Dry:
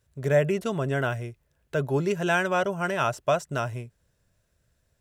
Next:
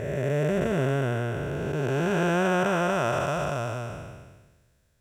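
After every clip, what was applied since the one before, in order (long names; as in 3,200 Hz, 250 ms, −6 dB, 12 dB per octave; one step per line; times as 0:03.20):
spectrum smeared in time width 746 ms
level +6 dB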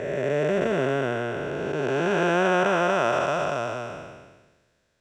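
three-way crossover with the lows and the highs turned down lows −14 dB, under 210 Hz, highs −18 dB, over 7,000 Hz
level +3.5 dB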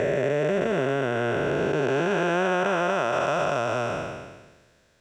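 downward compressor, threshold −29 dBFS, peak gain reduction 11 dB
level +8 dB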